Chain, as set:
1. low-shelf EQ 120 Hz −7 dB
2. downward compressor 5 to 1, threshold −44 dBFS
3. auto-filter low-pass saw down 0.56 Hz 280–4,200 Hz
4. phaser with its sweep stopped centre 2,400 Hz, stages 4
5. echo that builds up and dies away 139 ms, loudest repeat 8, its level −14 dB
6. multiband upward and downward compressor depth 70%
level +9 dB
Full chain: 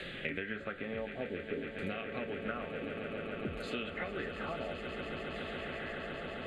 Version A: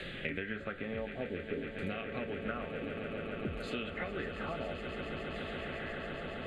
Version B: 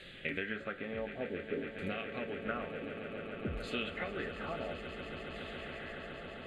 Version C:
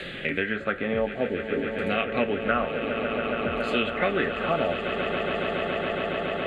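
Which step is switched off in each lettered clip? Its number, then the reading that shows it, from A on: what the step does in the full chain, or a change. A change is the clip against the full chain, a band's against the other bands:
1, 125 Hz band +2.5 dB
6, change in momentary loudness spread +4 LU
2, average gain reduction 7.0 dB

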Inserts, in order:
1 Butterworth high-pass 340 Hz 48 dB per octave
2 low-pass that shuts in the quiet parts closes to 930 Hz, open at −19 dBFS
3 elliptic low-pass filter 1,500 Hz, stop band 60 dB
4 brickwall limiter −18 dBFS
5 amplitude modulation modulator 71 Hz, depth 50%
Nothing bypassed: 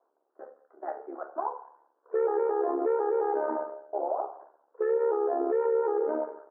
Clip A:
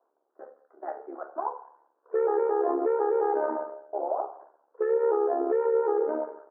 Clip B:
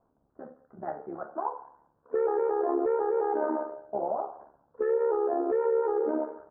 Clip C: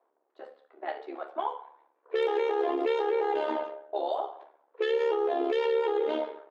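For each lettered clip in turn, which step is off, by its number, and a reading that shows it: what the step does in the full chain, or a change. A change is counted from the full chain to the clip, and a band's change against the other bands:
4, change in crest factor +2.5 dB
1, 250 Hz band +2.5 dB
3, 2 kHz band +8.0 dB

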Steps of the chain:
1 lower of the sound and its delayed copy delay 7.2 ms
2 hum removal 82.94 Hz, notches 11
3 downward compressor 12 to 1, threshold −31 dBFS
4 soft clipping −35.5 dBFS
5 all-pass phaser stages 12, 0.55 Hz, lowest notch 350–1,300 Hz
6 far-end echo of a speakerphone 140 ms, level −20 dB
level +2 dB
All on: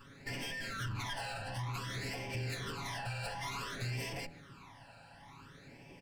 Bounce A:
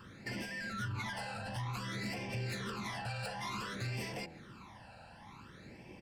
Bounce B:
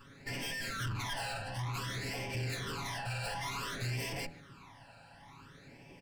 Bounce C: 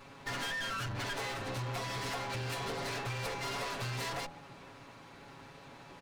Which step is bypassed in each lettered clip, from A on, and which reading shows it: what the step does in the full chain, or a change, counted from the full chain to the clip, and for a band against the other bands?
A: 1, 250 Hz band +4.0 dB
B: 3, average gain reduction 3.5 dB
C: 5, 125 Hz band −3.5 dB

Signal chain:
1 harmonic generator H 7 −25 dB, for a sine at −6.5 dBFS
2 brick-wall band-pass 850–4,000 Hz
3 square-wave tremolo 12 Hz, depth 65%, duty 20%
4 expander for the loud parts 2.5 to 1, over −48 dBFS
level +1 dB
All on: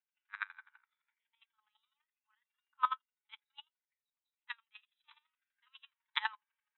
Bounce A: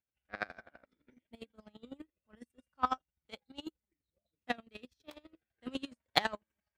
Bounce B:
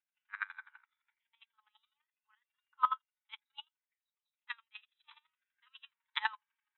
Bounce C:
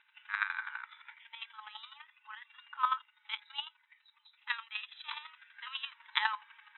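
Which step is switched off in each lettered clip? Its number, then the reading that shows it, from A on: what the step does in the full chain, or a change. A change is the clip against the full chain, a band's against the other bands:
2, change in crest factor +4.5 dB
1, change in crest factor −2.5 dB
4, change in crest factor −1.5 dB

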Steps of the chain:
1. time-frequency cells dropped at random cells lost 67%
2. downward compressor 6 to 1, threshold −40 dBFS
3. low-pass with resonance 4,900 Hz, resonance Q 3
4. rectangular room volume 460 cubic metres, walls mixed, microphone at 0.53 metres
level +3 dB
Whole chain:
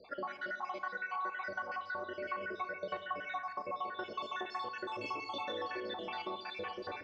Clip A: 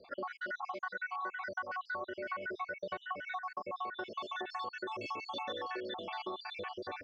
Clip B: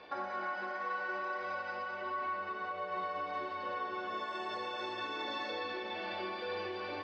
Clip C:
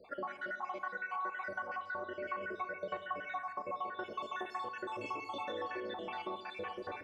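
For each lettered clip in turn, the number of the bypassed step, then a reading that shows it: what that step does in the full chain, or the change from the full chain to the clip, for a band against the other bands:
4, echo-to-direct ratio −8.0 dB to none audible
1, change in crest factor −2.5 dB
3, 4 kHz band −5.0 dB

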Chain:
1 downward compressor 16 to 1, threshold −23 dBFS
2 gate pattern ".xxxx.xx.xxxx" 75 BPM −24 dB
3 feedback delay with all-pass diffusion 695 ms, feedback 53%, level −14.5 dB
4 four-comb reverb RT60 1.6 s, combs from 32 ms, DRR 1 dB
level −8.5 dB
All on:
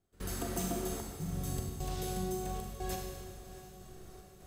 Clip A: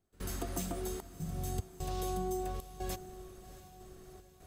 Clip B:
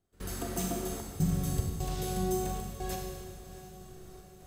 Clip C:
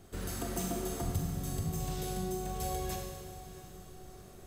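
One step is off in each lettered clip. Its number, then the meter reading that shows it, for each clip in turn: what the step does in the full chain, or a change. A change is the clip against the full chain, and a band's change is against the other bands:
4, 1 kHz band +3.0 dB
1, average gain reduction 2.5 dB
2, 125 Hz band +1.5 dB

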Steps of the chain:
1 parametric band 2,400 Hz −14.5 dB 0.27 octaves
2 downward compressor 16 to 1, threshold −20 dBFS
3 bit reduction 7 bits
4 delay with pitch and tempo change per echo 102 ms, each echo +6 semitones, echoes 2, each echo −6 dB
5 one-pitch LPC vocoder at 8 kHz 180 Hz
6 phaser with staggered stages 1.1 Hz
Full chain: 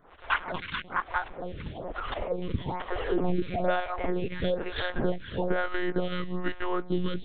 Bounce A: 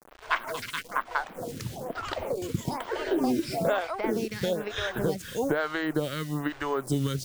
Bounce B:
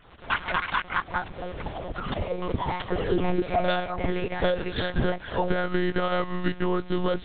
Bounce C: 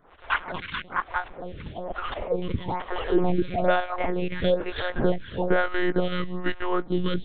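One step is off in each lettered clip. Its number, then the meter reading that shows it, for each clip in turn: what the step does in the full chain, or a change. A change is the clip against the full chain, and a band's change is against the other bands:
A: 5, change in crest factor +4.0 dB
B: 6, change in integrated loudness +3.5 LU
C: 2, average gain reduction 2.0 dB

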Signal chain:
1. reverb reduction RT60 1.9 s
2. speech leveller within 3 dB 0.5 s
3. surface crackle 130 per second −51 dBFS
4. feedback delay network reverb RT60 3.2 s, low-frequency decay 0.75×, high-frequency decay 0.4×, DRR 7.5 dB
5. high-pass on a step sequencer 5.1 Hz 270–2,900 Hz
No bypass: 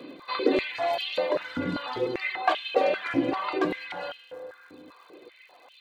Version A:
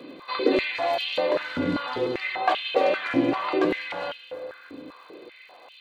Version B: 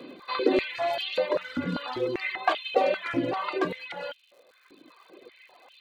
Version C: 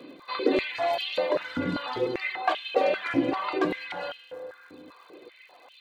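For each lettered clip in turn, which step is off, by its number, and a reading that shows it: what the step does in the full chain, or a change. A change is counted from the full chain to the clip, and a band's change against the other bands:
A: 1, change in momentary loudness spread +4 LU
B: 4, change in momentary loudness spread −2 LU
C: 2, change in crest factor −1.5 dB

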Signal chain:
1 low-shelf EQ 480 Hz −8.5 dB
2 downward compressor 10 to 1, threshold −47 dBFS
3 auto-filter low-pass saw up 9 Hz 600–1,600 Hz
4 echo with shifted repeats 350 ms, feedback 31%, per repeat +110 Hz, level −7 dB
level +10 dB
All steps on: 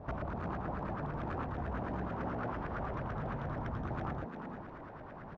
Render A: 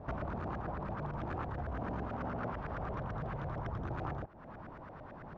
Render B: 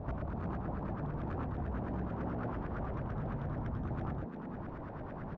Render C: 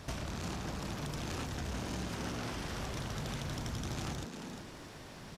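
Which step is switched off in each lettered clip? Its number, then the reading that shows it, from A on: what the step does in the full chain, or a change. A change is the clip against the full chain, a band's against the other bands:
4, change in momentary loudness spread +3 LU
1, 2 kHz band −5.0 dB
3, 4 kHz band +19.0 dB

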